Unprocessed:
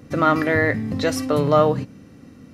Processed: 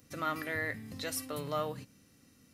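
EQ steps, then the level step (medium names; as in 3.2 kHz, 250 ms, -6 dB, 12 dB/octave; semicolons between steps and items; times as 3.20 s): dynamic bell 5.8 kHz, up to -7 dB, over -46 dBFS, Q 1.3; pre-emphasis filter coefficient 0.9; bass shelf 93 Hz +5.5 dB; -1.5 dB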